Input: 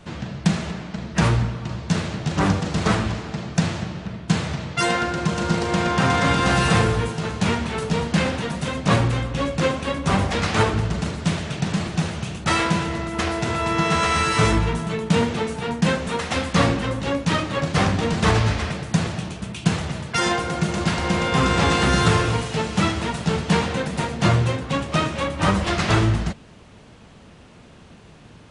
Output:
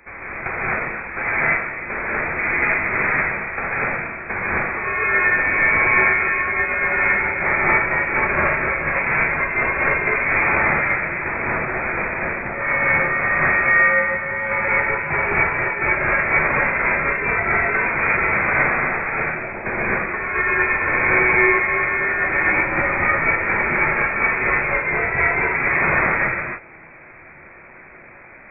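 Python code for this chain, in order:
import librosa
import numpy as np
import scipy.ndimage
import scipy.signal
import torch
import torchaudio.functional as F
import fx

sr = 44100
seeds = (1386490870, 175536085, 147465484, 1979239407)

y = scipy.signal.sosfilt(scipy.signal.butter(8, 800.0, 'highpass', fs=sr, output='sos'), x)
y = fx.over_compress(y, sr, threshold_db=-26.0, ratio=-0.5)
y = fx.rev_gated(y, sr, seeds[0], gate_ms=280, shape='rising', drr_db=-7.0)
y = fx.freq_invert(y, sr, carrier_hz=3200)
y = F.gain(torch.from_numpy(y), 3.0).numpy()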